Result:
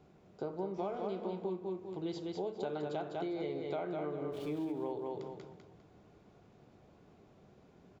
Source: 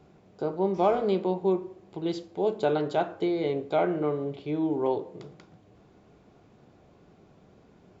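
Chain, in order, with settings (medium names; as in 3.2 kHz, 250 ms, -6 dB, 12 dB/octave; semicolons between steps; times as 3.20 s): 4.32–4.72 s: jump at every zero crossing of -43 dBFS; on a send: feedback delay 201 ms, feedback 32%, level -5.5 dB; on the sum: compression 6:1, threshold -29 dBFS, peak gain reduction 12 dB; trim -5.5 dB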